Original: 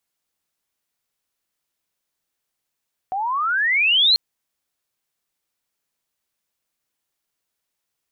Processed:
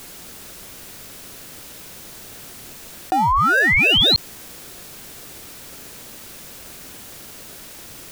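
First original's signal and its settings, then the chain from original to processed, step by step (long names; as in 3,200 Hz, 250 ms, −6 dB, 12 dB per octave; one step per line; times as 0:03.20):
pitch glide with a swell sine, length 1.04 s, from 737 Hz, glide +30.5 semitones, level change +10 dB, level −11.5 dB
in parallel at −8.5 dB: decimation without filtering 41×
on the sum: envelope flattener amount 70%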